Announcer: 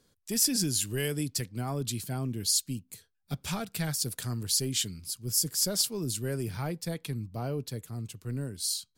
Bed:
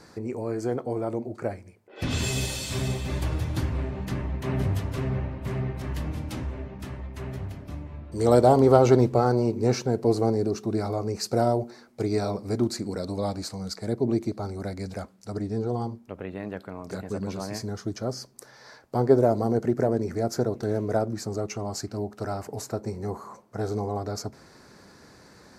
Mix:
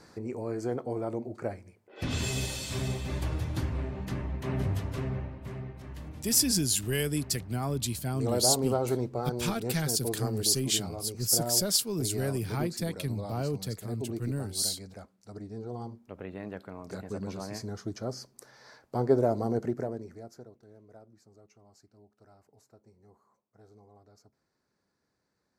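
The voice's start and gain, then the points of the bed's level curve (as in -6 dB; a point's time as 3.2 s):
5.95 s, +1.5 dB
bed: 4.98 s -4 dB
5.74 s -11.5 dB
15.6 s -11.5 dB
16.21 s -5 dB
19.62 s -5 dB
20.64 s -28 dB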